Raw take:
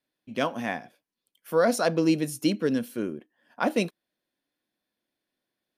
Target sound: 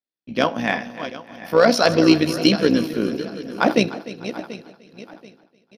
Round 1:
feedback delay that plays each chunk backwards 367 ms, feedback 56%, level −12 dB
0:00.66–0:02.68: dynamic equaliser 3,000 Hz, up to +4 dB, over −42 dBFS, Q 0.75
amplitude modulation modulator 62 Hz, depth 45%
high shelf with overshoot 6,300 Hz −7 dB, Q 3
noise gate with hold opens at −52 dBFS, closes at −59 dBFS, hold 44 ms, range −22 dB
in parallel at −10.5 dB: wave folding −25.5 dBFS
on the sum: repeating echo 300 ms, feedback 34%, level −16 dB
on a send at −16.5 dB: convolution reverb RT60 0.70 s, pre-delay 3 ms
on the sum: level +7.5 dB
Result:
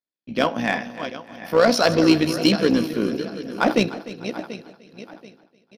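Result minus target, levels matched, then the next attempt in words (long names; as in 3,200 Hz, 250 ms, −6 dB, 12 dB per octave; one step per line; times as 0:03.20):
wave folding: distortion +19 dB
feedback delay that plays each chunk backwards 367 ms, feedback 56%, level −12 dB
0:00.66–0:02.68: dynamic equaliser 3,000 Hz, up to +4 dB, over −42 dBFS, Q 0.75
amplitude modulation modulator 62 Hz, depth 45%
high shelf with overshoot 6,300 Hz −7 dB, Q 3
noise gate with hold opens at −52 dBFS, closes at −59 dBFS, hold 44 ms, range −22 dB
in parallel at −10.5 dB: wave folding −15.5 dBFS
on the sum: repeating echo 300 ms, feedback 34%, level −16 dB
on a send at −16.5 dB: convolution reverb RT60 0.70 s, pre-delay 3 ms
on the sum: level +7.5 dB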